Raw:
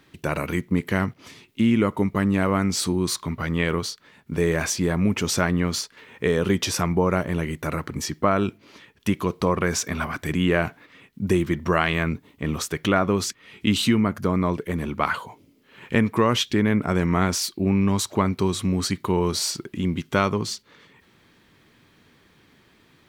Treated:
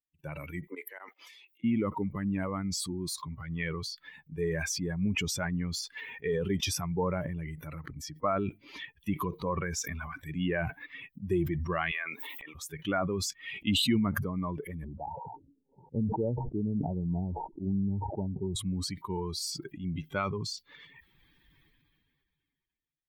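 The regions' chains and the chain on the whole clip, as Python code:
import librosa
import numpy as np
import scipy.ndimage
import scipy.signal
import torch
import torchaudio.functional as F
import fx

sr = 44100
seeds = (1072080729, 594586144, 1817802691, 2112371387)

y = fx.chain(x, sr, fx.highpass(hz=400.0, slope=24),
    fx.auto_swell(attack_ms=127.0), at=(0.67, 1.64))
y = fx.chain(y, sr, fx.highpass(hz=600.0, slope=12),
    fx.pre_swell(db_per_s=73.0), at=(11.91, 12.55))
y = fx.chain(y, sr, fx.cheby1_lowpass(hz=930.0, order=10),
    fx.env_lowpass_down(base_hz=560.0, full_db=-16.5),
    fx.sustainer(db_per_s=150.0), at=(14.84, 18.56))
y = fx.bin_expand(y, sr, power=2.0)
y = fx.sustainer(y, sr, db_per_s=25.0)
y = y * librosa.db_to_amplitude(-6.0)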